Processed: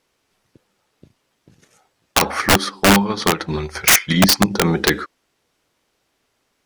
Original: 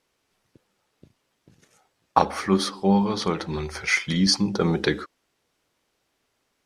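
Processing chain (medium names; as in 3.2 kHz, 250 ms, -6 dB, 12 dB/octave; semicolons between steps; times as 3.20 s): dynamic bell 1.7 kHz, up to +6 dB, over -38 dBFS, Q 1.2; 2.39–4.51 s: transient shaper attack +8 dB, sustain -6 dB; integer overflow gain 9.5 dB; trim +4.5 dB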